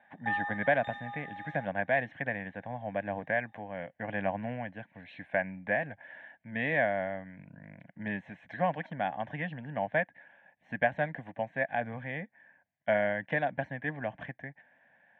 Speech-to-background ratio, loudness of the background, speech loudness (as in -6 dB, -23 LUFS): 5.0 dB, -38.5 LUFS, -33.5 LUFS